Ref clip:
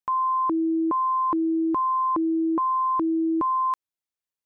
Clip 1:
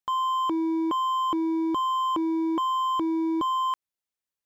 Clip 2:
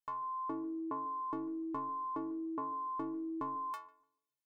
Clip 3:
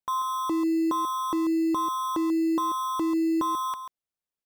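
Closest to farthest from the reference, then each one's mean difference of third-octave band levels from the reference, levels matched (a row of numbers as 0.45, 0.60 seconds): 1, 2, 3; 4.5, 7.0, 10.5 decibels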